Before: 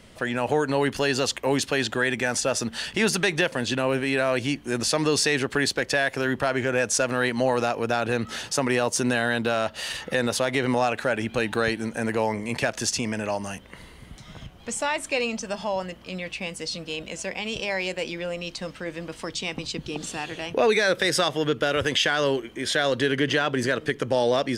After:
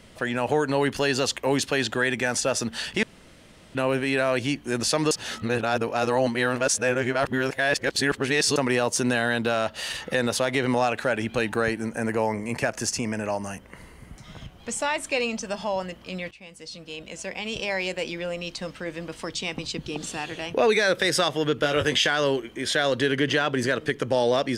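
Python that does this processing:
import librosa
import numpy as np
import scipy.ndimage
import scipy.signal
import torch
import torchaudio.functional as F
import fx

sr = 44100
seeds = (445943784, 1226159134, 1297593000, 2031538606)

y = fx.peak_eq(x, sr, hz=3600.0, db=-10.5, octaves=0.59, at=(11.49, 14.24))
y = fx.doubler(y, sr, ms=20.0, db=-6.5, at=(21.56, 22.07))
y = fx.edit(y, sr, fx.room_tone_fill(start_s=3.03, length_s=0.72),
    fx.reverse_span(start_s=5.11, length_s=3.45),
    fx.fade_in_from(start_s=16.31, length_s=1.33, floor_db=-17.5), tone=tone)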